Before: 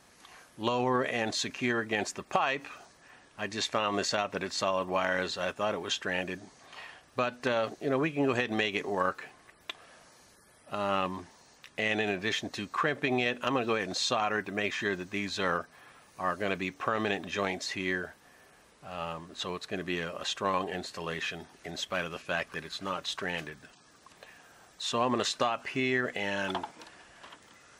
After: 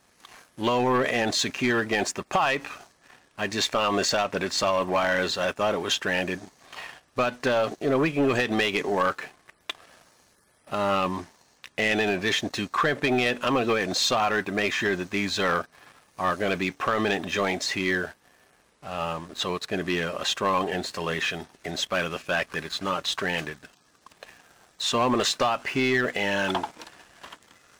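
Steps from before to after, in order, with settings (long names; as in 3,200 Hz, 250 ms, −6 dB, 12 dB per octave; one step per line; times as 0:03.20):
leveller curve on the samples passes 2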